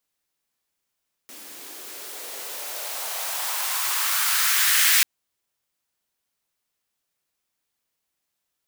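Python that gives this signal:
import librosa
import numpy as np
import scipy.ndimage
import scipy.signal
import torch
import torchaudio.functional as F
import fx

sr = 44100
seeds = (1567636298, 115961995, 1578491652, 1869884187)

y = fx.riser_noise(sr, seeds[0], length_s=3.74, colour='white', kind='highpass', start_hz=260.0, end_hz=1900.0, q=2.2, swell_db=25.0, law='exponential')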